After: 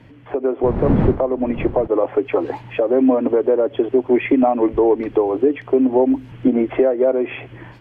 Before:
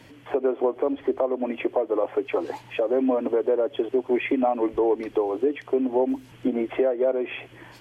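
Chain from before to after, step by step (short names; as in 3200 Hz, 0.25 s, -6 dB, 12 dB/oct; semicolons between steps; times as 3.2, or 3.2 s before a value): 0.63–1.86 wind noise 420 Hz -29 dBFS; tone controls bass +8 dB, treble -15 dB; AGC gain up to 6 dB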